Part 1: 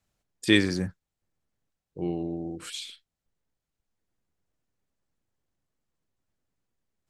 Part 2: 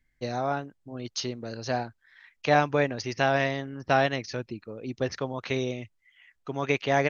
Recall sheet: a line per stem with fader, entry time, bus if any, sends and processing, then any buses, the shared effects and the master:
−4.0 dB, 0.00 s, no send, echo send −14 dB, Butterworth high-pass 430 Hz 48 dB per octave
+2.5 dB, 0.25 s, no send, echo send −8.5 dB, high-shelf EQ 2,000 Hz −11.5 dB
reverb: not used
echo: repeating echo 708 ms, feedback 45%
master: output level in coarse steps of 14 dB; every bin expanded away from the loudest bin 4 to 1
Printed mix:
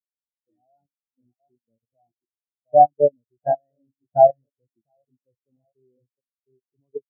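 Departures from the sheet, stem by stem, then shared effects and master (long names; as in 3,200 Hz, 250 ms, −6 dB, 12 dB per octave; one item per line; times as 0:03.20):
stem 1: missing Butterworth high-pass 430 Hz 48 dB per octave
stem 2 +2.5 dB → +9.5 dB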